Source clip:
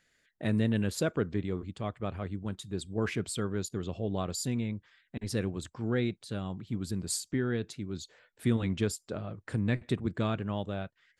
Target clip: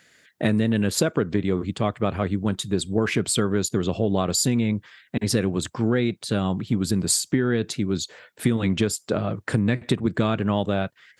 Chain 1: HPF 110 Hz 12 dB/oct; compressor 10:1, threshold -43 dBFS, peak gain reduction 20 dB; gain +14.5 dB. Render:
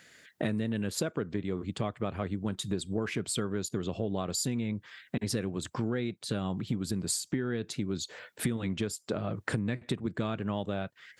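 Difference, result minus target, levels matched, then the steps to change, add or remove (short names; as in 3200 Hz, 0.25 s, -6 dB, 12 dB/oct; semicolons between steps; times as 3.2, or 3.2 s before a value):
compressor: peak gain reduction +10.5 dB
change: compressor 10:1, threshold -31.5 dBFS, peak gain reduction 10 dB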